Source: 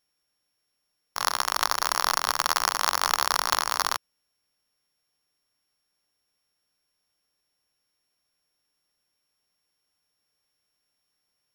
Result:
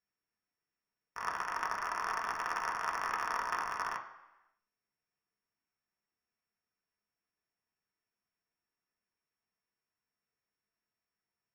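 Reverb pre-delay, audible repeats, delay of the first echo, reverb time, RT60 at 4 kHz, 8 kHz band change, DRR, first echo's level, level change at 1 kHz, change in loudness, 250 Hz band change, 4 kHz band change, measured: 3 ms, none, none, 1.0 s, 0.95 s, -21.5 dB, 0.0 dB, none, -8.5 dB, -11.0 dB, -8.0 dB, -22.0 dB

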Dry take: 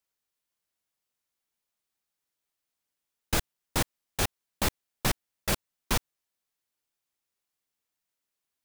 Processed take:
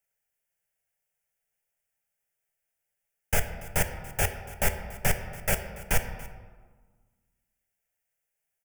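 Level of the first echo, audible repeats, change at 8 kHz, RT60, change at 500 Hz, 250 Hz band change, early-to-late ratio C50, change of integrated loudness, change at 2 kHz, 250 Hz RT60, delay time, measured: -20.0 dB, 1, +1.5 dB, 1.5 s, +3.0 dB, -3.0 dB, 9.0 dB, +1.5 dB, +3.5 dB, 2.0 s, 0.285 s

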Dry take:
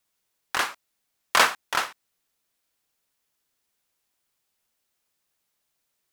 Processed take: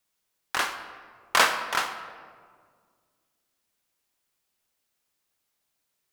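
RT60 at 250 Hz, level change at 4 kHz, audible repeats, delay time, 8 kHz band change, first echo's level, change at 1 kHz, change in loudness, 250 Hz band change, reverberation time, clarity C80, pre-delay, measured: 2.4 s, -1.0 dB, none, none, -1.0 dB, none, -1.0 dB, -1.0 dB, -0.5 dB, 1.9 s, 10.5 dB, 29 ms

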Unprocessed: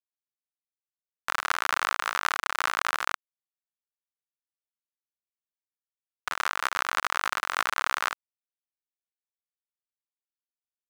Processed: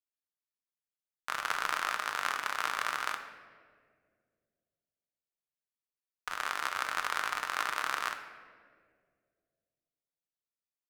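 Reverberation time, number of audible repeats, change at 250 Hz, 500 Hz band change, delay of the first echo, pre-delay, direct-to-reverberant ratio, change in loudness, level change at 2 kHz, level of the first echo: 2.0 s, none, -4.0 dB, -4.5 dB, none, 7 ms, 5.0 dB, -5.0 dB, -5.0 dB, none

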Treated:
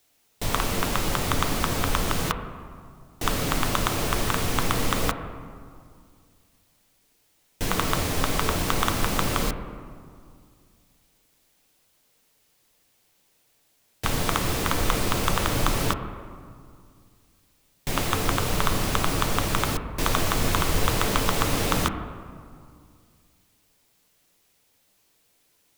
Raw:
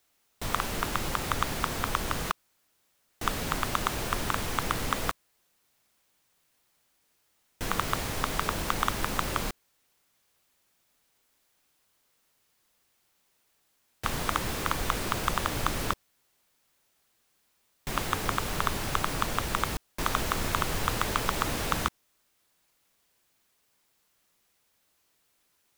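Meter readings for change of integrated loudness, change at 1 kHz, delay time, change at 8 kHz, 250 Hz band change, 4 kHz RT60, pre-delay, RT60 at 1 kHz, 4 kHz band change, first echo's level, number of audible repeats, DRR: +5.0 dB, +3.0 dB, none, +6.0 dB, +7.5 dB, 1.3 s, 6 ms, 2.2 s, +5.5 dB, none, none, 6.0 dB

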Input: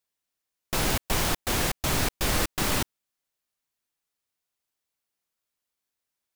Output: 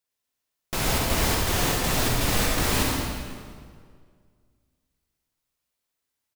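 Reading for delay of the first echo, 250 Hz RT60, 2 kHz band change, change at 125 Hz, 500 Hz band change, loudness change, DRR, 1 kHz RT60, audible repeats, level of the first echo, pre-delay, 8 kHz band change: 0.115 s, 2.2 s, +2.5 dB, +4.5 dB, +3.5 dB, +2.5 dB, -2.5 dB, 1.8 s, 1, -7.5 dB, 38 ms, +2.5 dB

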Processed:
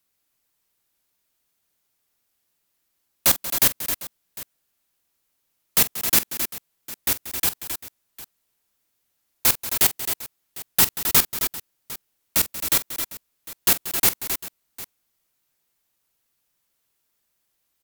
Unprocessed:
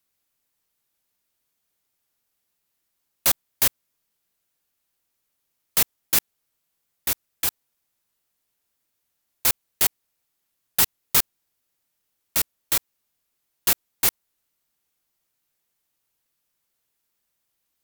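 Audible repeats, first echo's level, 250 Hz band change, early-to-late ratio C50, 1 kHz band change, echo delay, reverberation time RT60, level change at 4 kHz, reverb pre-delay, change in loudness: 4, -15.5 dB, +6.0 dB, none, +3.0 dB, 45 ms, none, +3.0 dB, none, +1.5 dB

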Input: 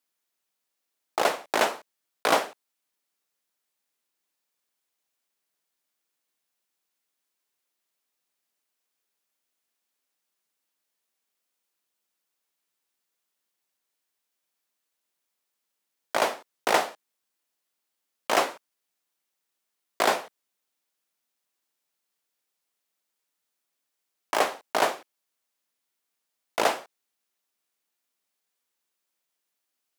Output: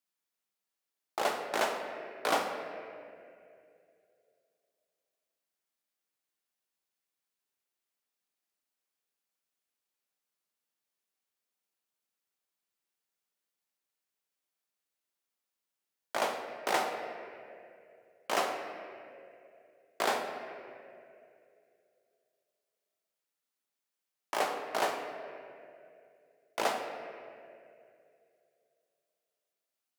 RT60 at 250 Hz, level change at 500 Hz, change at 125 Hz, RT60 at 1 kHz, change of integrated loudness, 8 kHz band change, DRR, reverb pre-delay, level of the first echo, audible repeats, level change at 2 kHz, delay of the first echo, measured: 2.6 s, -6.0 dB, -6.0 dB, 2.2 s, -8.0 dB, -7.5 dB, 3.0 dB, 5 ms, none, none, -6.5 dB, none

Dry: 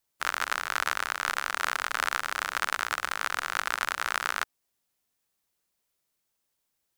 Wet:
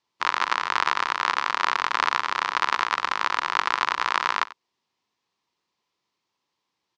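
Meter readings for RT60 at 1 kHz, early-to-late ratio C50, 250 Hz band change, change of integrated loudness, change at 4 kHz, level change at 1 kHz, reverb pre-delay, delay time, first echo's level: none, none, +6.5 dB, +5.5 dB, +5.0 dB, +8.0 dB, none, 91 ms, -18.5 dB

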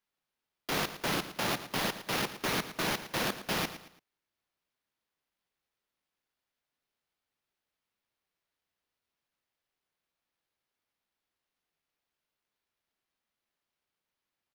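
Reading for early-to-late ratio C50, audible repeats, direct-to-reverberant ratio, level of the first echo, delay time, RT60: none, 3, none, -13.0 dB, 0.112 s, none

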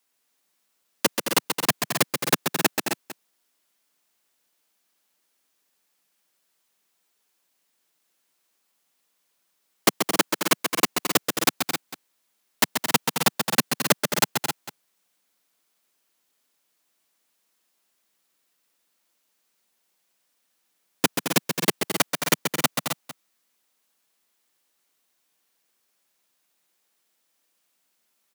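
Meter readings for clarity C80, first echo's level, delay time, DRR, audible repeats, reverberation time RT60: none, -6.5 dB, 0.133 s, none, 4, none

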